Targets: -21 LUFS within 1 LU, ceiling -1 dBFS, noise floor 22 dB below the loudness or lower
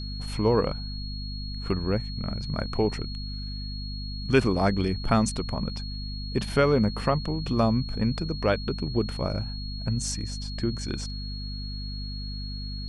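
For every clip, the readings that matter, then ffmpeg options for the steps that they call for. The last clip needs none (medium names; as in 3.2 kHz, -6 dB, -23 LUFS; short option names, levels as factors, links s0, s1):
hum 50 Hz; highest harmonic 250 Hz; hum level -32 dBFS; steady tone 4.3 kHz; tone level -39 dBFS; loudness -28.5 LUFS; peak level -6.0 dBFS; loudness target -21.0 LUFS
-> -af "bandreject=f=50:t=h:w=6,bandreject=f=100:t=h:w=6,bandreject=f=150:t=h:w=6,bandreject=f=200:t=h:w=6,bandreject=f=250:t=h:w=6"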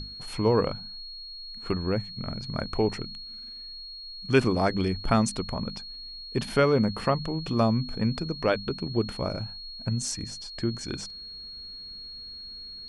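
hum not found; steady tone 4.3 kHz; tone level -39 dBFS
-> -af "bandreject=f=4300:w=30"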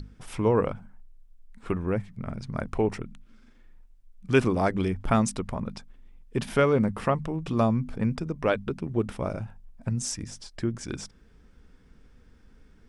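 steady tone not found; loudness -28.0 LUFS; peak level -7.0 dBFS; loudness target -21.0 LUFS
-> -af "volume=2.24,alimiter=limit=0.891:level=0:latency=1"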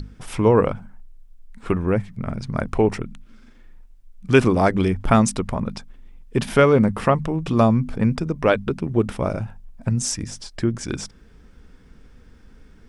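loudness -21.0 LUFS; peak level -1.0 dBFS; noise floor -49 dBFS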